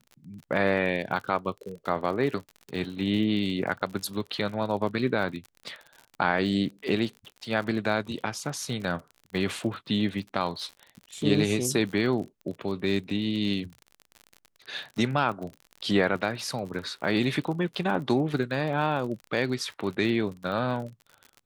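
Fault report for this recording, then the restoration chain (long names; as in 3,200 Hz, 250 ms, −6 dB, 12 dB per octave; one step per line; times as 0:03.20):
surface crackle 46 per second −35 dBFS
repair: click removal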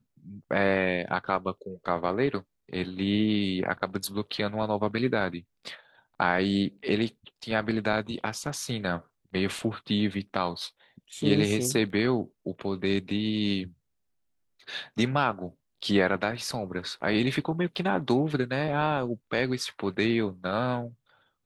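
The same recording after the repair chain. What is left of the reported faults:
none of them is left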